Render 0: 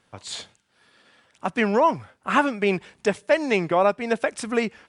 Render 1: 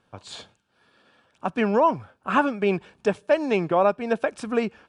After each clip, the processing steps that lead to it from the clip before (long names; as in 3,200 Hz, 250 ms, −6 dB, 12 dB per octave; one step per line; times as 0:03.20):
high-shelf EQ 4,100 Hz −11.5 dB
notch filter 2,000 Hz, Q 5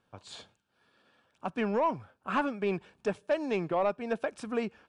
soft clipping −11.5 dBFS, distortion −19 dB
level −7 dB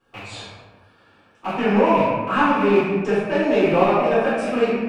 loose part that buzzes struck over −50 dBFS, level −30 dBFS
convolution reverb RT60 1.3 s, pre-delay 3 ms, DRR −15 dB
level −4.5 dB